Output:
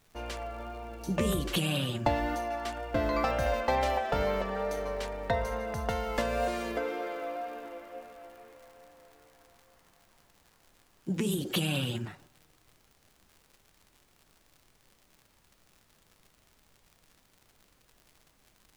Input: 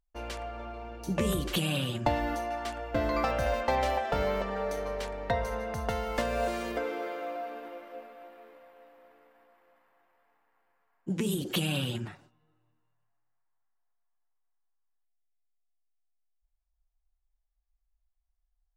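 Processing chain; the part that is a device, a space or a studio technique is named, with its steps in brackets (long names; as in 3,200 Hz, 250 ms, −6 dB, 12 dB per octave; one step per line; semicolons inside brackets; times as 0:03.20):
vinyl LP (tape wow and flutter 20 cents; surface crackle 110 per second −46 dBFS; pink noise bed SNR 32 dB)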